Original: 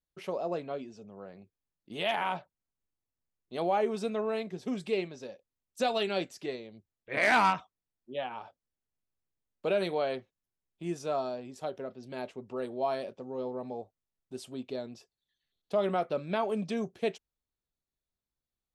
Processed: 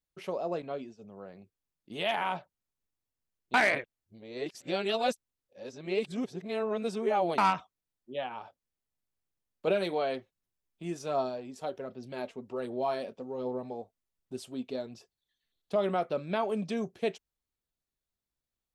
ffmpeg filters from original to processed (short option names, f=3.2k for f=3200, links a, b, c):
-filter_complex "[0:a]asettb=1/sr,asplit=3[a][b][c];[a]atrim=end=0.624[d];[b]atrim=start=0.62:end=1.03,asetpts=PTS-STARTPTS,afade=t=in:d=0.004:c=qsin,afade=t=out:st=0.406:d=0.004:c=qsin,agate=range=-33dB:threshold=-47dB:ratio=3:release=100:detection=peak[e];[c]atrim=start=1.026[f];[d][e]acrossfade=d=0.004:c1=hsin:c2=qsin[g];[g][f]acrossfade=d=0.004:c1=qsin:c2=hsin,asettb=1/sr,asplit=3[h][i][j];[h]atrim=end=9.674[k];[i]atrim=start=9.67:end=15.76,asetpts=PTS-STARTPTS,afade=t=in:d=0.004:c=qsin,afade=t=out:st=6.086:d=0.004:c=qsin,aphaser=in_gain=1:out_gain=1:delay=4.5:decay=0.32:speed=1.3:type=sinusoidal[l];[j]atrim=start=15.756[m];[k][l]acrossfade=d=0.004:c1=hsin:c2=qsin[n];[n][m]acrossfade=d=0.004:c1=qsin:c2=hsin,asplit=3[o][p][q];[o]atrim=end=3.542[r];[p]atrim=start=3.538:end=7.382,asetpts=PTS-STARTPTS,areverse[s];[q]atrim=start=7.378[t];[r][s]acrossfade=d=0.004:c1=hsin:c2=hsin[u];[u][t]acrossfade=d=0.004:c1=hsin:c2=hsin"